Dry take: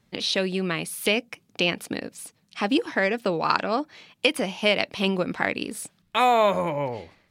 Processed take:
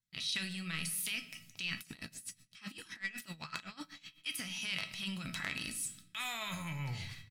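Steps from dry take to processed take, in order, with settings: band-stop 610 Hz, Q 12; gate -55 dBFS, range -22 dB; FFT filter 150 Hz 0 dB, 470 Hz -29 dB, 1.7 kHz -1 dB, 8.7 kHz +8 dB; compression 5:1, threshold -32 dBFS, peak gain reduction 15 dB; transient shaper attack -8 dB, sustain +11 dB; feedback comb 650 Hz, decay 0.23 s, harmonics all, mix 80%; speakerphone echo 180 ms, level -21 dB; simulated room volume 160 m³, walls mixed, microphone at 0.34 m; 1.79–4.26 s: logarithmic tremolo 7.9 Hz, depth 19 dB; trim +8 dB

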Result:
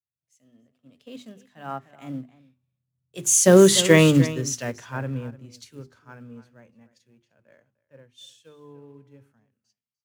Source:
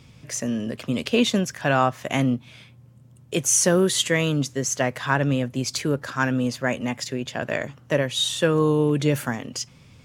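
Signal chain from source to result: Doppler pass-by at 3.83 s, 20 m/s, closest 8.7 m; hum notches 50/100/150/200/250/300/350/400 Hz; harmonic-percussive split harmonic +8 dB; on a send: delay 301 ms -13.5 dB; on the sum: dynamic bell 310 Hz, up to +4 dB, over -35 dBFS, Q 6.8; in parallel at -4 dB: short-mantissa float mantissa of 2-bit; on the sum: three bands expanded up and down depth 100%; trim -12.5 dB

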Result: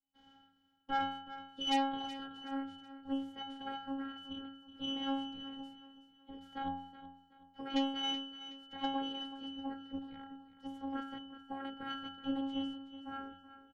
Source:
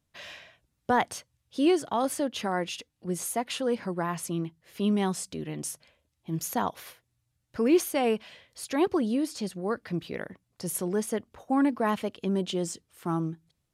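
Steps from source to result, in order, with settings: spectral peaks clipped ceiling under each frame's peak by 23 dB; pitch-class resonator F#, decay 0.69 s; robot voice 272 Hz; Chebyshev shaper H 5 -16 dB, 6 -18 dB, 7 -28 dB, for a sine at -28.5 dBFS; on a send: feedback delay 374 ms, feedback 35%, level -13.5 dB; on the sum: trim +8.5 dB

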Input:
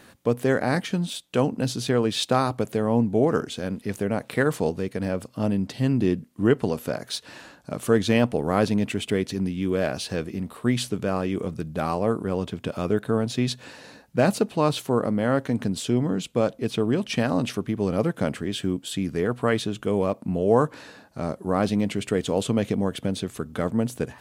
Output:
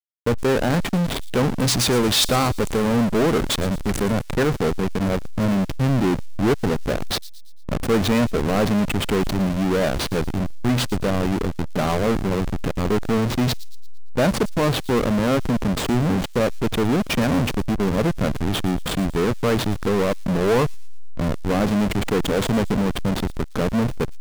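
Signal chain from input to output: 1.60–4.12 s: treble shelf 3.5 kHz +12 dB; hysteresis with a dead band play -23 dBFS; power-law waveshaper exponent 0.35; feedback echo behind a high-pass 114 ms, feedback 46%, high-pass 5.3 kHz, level -13 dB; trim -5 dB

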